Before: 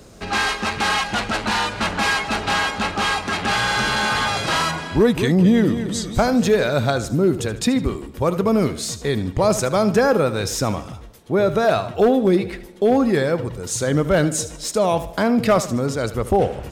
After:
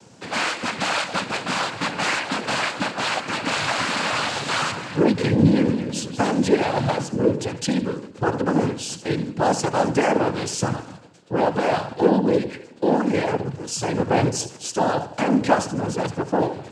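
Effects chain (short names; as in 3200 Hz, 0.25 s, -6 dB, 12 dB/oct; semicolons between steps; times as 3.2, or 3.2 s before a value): de-hum 135.4 Hz, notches 30; noise vocoder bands 8; gain -2 dB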